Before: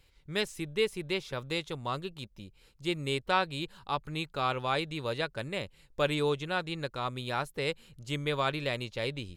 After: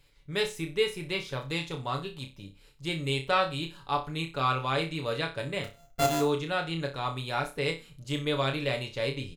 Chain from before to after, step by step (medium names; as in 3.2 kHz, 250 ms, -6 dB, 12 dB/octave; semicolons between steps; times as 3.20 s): 5.64–6.21 s: sorted samples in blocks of 64 samples; comb 7 ms, depth 48%; flutter echo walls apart 5.2 m, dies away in 0.28 s